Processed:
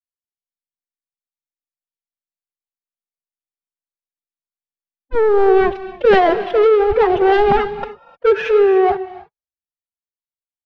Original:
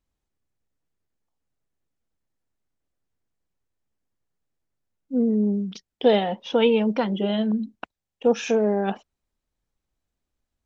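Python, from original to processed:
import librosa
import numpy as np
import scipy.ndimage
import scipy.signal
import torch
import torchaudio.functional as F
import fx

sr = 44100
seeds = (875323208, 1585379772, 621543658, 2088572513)

y = fx.wiener(x, sr, points=15)
y = fx.band_shelf(y, sr, hz=950.0, db=8.5, octaves=2.8)
y = fx.leveller(y, sr, passes=5)
y = fx.rider(y, sr, range_db=4, speed_s=0.5)
y = fx.pitch_keep_formants(y, sr, semitones=11.0)
y = fx.air_absorb(y, sr, metres=330.0)
y = fx.rev_gated(y, sr, seeds[0], gate_ms=330, shape='rising', drr_db=10.5)
y = fx.band_widen(y, sr, depth_pct=40)
y = y * 10.0 ** (-6.0 / 20.0)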